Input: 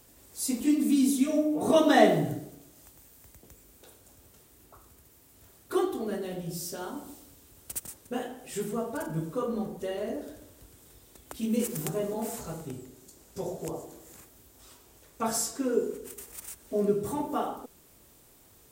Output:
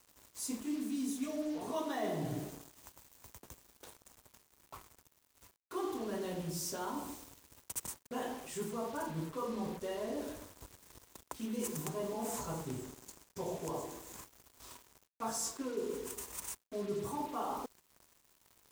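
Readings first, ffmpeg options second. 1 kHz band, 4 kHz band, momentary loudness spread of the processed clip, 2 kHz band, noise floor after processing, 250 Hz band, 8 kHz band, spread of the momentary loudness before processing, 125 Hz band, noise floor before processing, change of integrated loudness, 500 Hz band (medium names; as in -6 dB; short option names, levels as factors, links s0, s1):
-7.5 dB, -8.0 dB, 18 LU, -11.5 dB, -73 dBFS, -11.0 dB, -5.5 dB, 18 LU, -7.0 dB, -58 dBFS, -10.0 dB, -10.5 dB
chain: -af "equalizer=f=1000:t=o:w=0.33:g=11,equalizer=f=6300:t=o:w=0.33:g=4,equalizer=f=12500:t=o:w=0.33:g=-4,areverse,acompressor=threshold=0.0158:ratio=5,areverse,acrusher=bits=7:mix=0:aa=0.5"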